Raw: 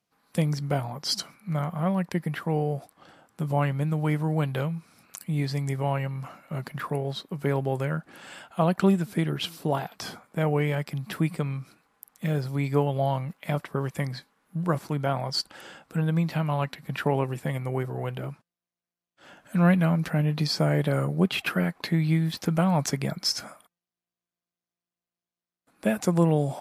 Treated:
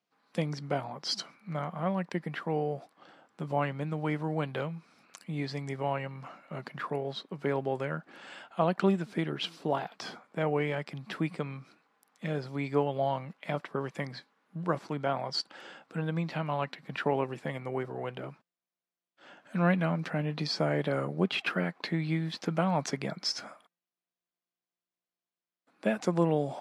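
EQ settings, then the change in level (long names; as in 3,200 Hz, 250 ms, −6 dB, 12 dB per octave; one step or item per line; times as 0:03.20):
band-pass filter 210–5,200 Hz
−2.5 dB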